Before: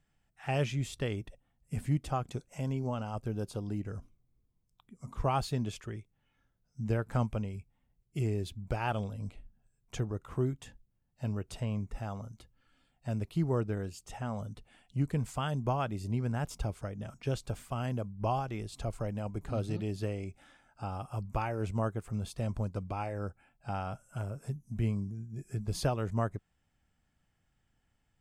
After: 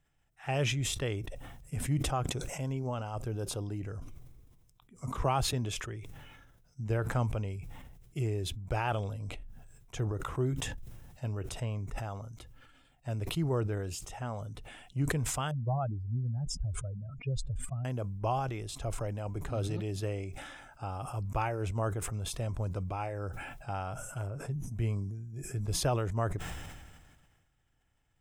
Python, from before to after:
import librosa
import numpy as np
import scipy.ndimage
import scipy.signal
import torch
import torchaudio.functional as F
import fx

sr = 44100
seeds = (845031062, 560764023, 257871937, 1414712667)

y = fx.band_squash(x, sr, depth_pct=40, at=(4.98, 5.53))
y = fx.spec_expand(y, sr, power=2.5, at=(15.51, 17.85))
y = fx.lowpass(y, sr, hz=fx.line((24.26, 2400.0), (24.67, 3800.0)), slope=6, at=(24.26, 24.67), fade=0.02)
y = fx.peak_eq(y, sr, hz=210.0, db=-9.5, octaves=0.36)
y = fx.notch(y, sr, hz=4500.0, q=9.0)
y = fx.sustainer(y, sr, db_per_s=35.0)